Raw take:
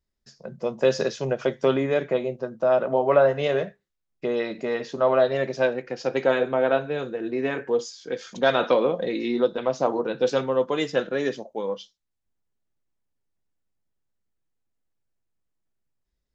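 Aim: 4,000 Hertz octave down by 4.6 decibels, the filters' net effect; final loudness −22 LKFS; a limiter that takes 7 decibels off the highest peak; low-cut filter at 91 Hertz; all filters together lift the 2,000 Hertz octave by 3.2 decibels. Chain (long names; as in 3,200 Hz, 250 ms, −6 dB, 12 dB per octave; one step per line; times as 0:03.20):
high-pass filter 91 Hz
parametric band 2,000 Hz +6 dB
parametric band 4,000 Hz −8 dB
level +4 dB
brickwall limiter −9.5 dBFS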